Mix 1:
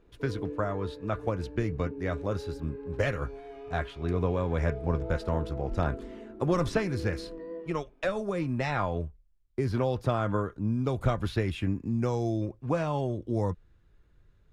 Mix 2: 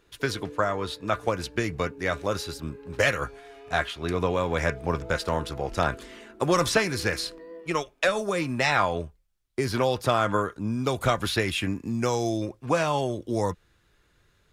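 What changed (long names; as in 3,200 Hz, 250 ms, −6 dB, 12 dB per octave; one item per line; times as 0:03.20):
speech +7.5 dB
master: add spectral tilt +3 dB per octave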